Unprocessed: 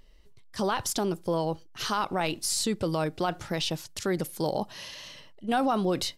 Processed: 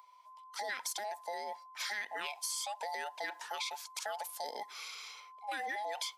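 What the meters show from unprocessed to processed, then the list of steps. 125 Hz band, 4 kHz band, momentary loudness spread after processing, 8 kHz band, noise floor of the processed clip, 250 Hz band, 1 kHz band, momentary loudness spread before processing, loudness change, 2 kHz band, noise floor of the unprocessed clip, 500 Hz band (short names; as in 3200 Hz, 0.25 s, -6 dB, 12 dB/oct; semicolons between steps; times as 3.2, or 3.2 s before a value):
under -40 dB, -7.5 dB, 8 LU, -7.5 dB, -58 dBFS, -31.0 dB, -8.0 dB, 12 LU, -10.5 dB, -2.5 dB, -51 dBFS, -15.0 dB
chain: band inversion scrambler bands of 1000 Hz; HPF 980 Hz 12 dB/oct; compressor, threshold -32 dBFS, peak gain reduction 6.5 dB; gain -3 dB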